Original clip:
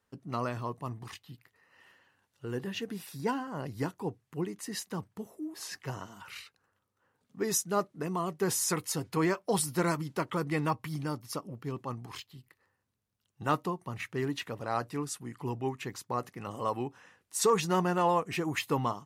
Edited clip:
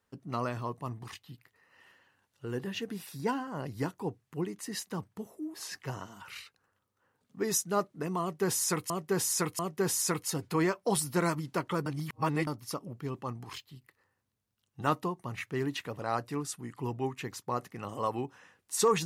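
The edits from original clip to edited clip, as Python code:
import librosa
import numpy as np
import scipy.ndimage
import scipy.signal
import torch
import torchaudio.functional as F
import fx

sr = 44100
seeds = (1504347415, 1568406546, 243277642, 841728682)

y = fx.edit(x, sr, fx.repeat(start_s=8.21, length_s=0.69, count=3),
    fx.reverse_span(start_s=10.48, length_s=0.61), tone=tone)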